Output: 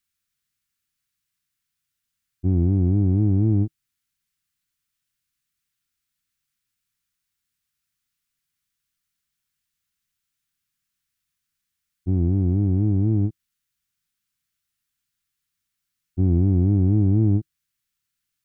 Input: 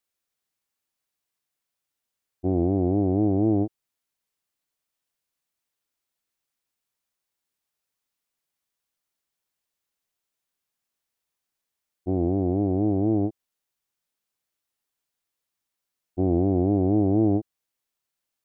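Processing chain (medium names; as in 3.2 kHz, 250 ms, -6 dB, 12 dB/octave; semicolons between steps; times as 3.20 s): FFT filter 150 Hz 0 dB, 320 Hz -12 dB, 640 Hz -26 dB, 1.4 kHz -5 dB; trim +8.5 dB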